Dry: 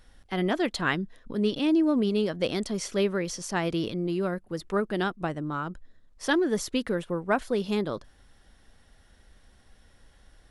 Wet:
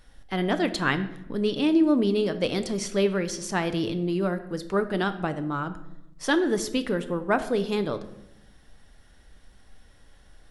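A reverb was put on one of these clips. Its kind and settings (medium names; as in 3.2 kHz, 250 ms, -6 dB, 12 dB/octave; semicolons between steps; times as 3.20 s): simulated room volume 280 m³, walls mixed, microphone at 0.37 m; trim +1.5 dB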